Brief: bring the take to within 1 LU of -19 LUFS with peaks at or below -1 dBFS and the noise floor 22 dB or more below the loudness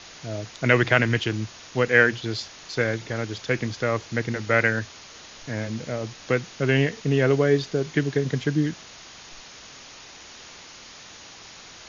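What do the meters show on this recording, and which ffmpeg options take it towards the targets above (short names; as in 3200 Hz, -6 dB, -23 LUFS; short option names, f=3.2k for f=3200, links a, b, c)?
noise floor -45 dBFS; noise floor target -46 dBFS; loudness -24.0 LUFS; peak -3.0 dBFS; loudness target -19.0 LUFS
-> -af "afftdn=nr=6:nf=-45"
-af "volume=5dB,alimiter=limit=-1dB:level=0:latency=1"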